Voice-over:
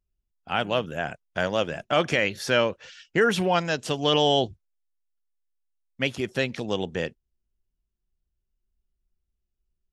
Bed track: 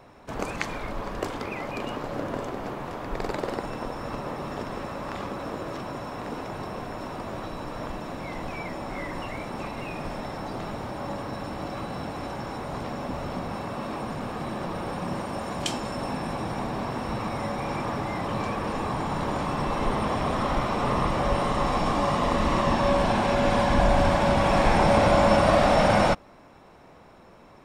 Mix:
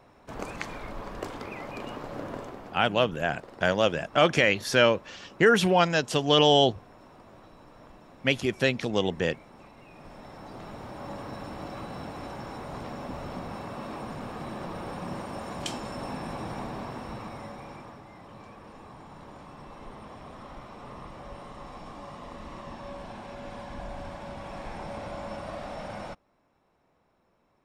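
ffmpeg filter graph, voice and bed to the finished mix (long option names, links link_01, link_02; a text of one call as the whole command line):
ffmpeg -i stem1.wav -i stem2.wav -filter_complex "[0:a]adelay=2250,volume=1.5dB[link_01];[1:a]volume=6.5dB,afade=type=out:start_time=2.32:duration=0.55:silence=0.266073,afade=type=in:start_time=9.87:duration=1.39:silence=0.251189,afade=type=out:start_time=16.53:duration=1.49:silence=0.211349[link_02];[link_01][link_02]amix=inputs=2:normalize=0" out.wav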